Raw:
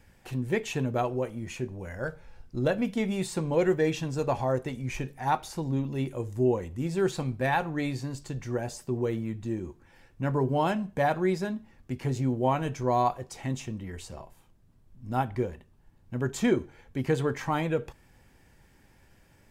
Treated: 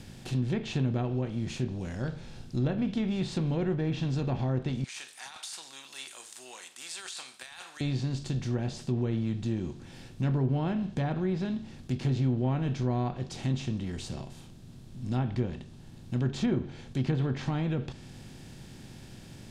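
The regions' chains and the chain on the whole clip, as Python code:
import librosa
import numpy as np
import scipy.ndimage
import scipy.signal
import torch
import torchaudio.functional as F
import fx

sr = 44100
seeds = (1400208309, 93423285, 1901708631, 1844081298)

y = fx.chain(x, sr, fx.highpass(hz=1200.0, slope=24),
    fx.peak_eq(hz=8700.0, db=13.0, octaves=0.42),
    fx.over_compress(threshold_db=-41.0, ratio=-1.0), at=(4.84, 7.81))
y = fx.bin_compress(y, sr, power=0.6)
y = fx.env_lowpass_down(y, sr, base_hz=1900.0, full_db=-18.5)
y = fx.graphic_eq(y, sr, hz=(125, 500, 1000, 2000, 4000, 8000), db=(4, -10, -10, -8, 6, -3))
y = F.gain(torch.from_numpy(y), -2.0).numpy()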